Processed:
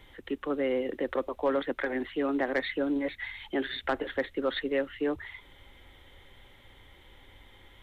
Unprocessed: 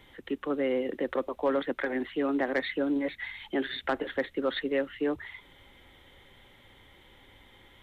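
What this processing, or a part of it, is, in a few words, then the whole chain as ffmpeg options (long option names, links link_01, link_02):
low shelf boost with a cut just above: -af "lowshelf=frequency=88:gain=7.5,equalizer=frequency=180:width_type=o:width=1.1:gain=-4"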